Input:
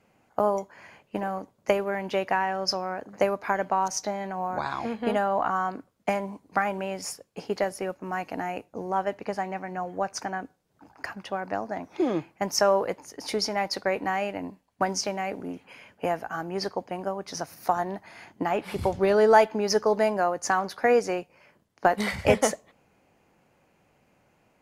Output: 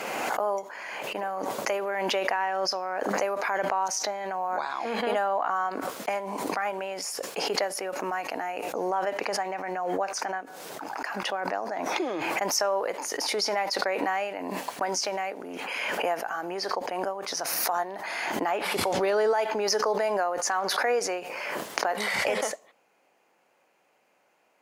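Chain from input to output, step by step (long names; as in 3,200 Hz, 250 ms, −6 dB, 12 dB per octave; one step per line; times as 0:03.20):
high-pass filter 460 Hz 12 dB per octave
brickwall limiter −17.5 dBFS, peak gain reduction 11 dB
background raised ahead of every attack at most 21 dB per second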